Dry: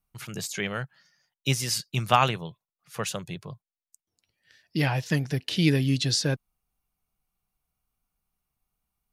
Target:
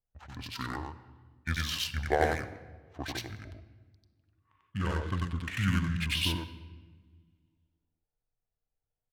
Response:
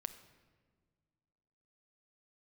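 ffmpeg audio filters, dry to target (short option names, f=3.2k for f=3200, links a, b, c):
-filter_complex "[0:a]asetrate=26990,aresample=44100,atempo=1.63392,adynamicsmooth=sensitivity=7:basefreq=1.4k,asplit=2[a][b];[1:a]atrim=start_sample=2205,highshelf=f=2.3k:g=9,adelay=93[c];[b][c]afir=irnorm=-1:irlink=0,volume=-0.5dB[d];[a][d]amix=inputs=2:normalize=0,volume=-7.5dB"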